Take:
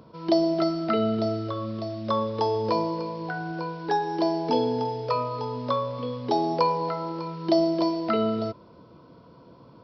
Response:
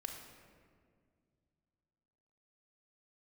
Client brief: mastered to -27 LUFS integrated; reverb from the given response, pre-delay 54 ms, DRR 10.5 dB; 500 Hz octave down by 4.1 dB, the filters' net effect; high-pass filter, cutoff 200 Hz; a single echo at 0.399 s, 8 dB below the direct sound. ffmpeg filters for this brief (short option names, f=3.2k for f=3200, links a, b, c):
-filter_complex "[0:a]highpass=200,equalizer=f=500:t=o:g=-5.5,aecho=1:1:399:0.398,asplit=2[a][b];[1:a]atrim=start_sample=2205,adelay=54[c];[b][c]afir=irnorm=-1:irlink=0,volume=-8.5dB[d];[a][d]amix=inputs=2:normalize=0,volume=2dB"